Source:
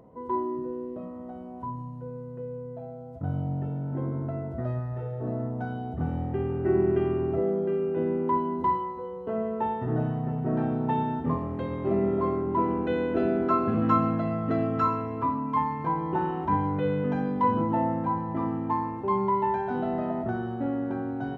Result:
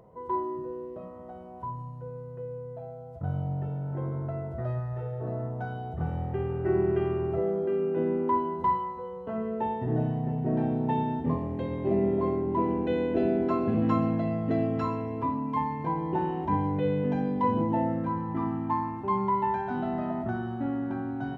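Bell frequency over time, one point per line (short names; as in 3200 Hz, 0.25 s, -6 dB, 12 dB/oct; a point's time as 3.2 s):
bell -13.5 dB 0.4 oct
7.58 s 260 Hz
7.93 s 68 Hz
8.67 s 310 Hz
9.23 s 310 Hz
9.64 s 1300 Hz
17.72 s 1300 Hz
18.52 s 480 Hz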